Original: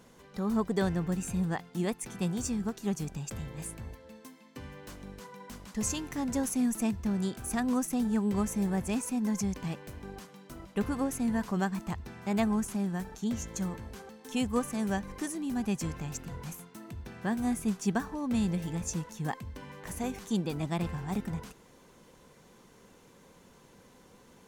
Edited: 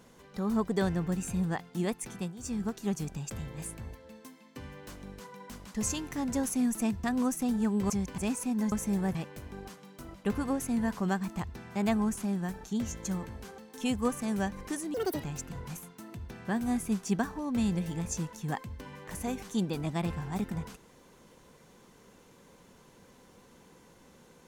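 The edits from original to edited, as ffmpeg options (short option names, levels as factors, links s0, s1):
-filter_complex "[0:a]asplit=10[s0][s1][s2][s3][s4][s5][s6][s7][s8][s9];[s0]atrim=end=2.33,asetpts=PTS-STARTPTS,afade=t=out:st=2.05:d=0.28:c=qsin:silence=0.237137[s10];[s1]atrim=start=2.33:end=2.38,asetpts=PTS-STARTPTS,volume=0.237[s11];[s2]atrim=start=2.38:end=7.042,asetpts=PTS-STARTPTS,afade=t=in:d=0.28:c=qsin:silence=0.237137[s12];[s3]atrim=start=7.548:end=8.412[s13];[s4]atrim=start=9.378:end=9.662[s14];[s5]atrim=start=8.838:end=9.382[s15];[s6]atrim=start=8.408:end=8.842[s16];[s7]atrim=start=9.658:end=15.454[s17];[s8]atrim=start=15.45:end=16,asetpts=PTS-STARTPTS,asetrate=81585,aresample=44100[s18];[s9]atrim=start=15.996[s19];[s10][s11][s12]concat=n=3:v=0:a=1[s20];[s20][s13]acrossfade=d=0.004:c1=hsin:c2=hsin[s21];[s21][s14]acrossfade=d=0.004:c1=hsin:c2=hsin[s22];[s22][s15]acrossfade=d=0.004:c1=hsin:c2=hsin[s23];[s23][s16]acrossfade=d=0.004:c1=hsin:c2=hsin[s24];[s24][s17]acrossfade=d=0.004:c1=hsin:c2=hsin[s25];[s25][s18]acrossfade=d=0.004:c1=hsin:c2=hsin[s26];[s26][s19]acrossfade=d=0.004:c1=hsin:c2=hsin"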